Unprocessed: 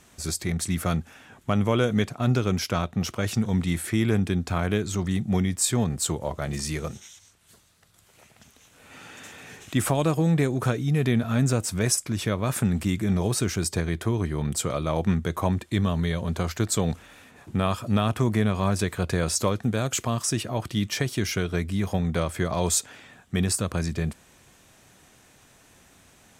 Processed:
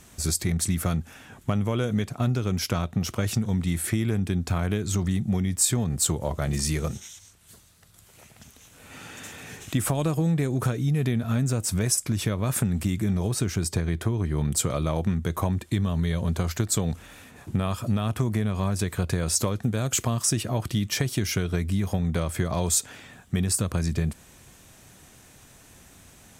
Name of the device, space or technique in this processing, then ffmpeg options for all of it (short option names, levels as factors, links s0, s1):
ASMR close-microphone chain: -filter_complex "[0:a]lowshelf=f=200:g=7,acompressor=threshold=0.0794:ratio=6,highshelf=f=7000:g=7,asettb=1/sr,asplit=3[s0][s1][s2];[s0]atrim=end=13.294[s3];[s1]atrim=start=13.29:end=14.37,asetpts=PTS-STARTPTS,afade=t=in:d=0.004:c=qsin,afade=t=out:st=1.076:d=0.004:c=qsin,highshelf=f=5300:g=-5[s4];[s2]atrim=start=14.366[s5];[s3][s4]acrossfade=d=0.004:c1=hsin:c2=qsin[s6];[s6][s5]acrossfade=d=0.004:c1=qsin:c2=hsin,volume=1.12"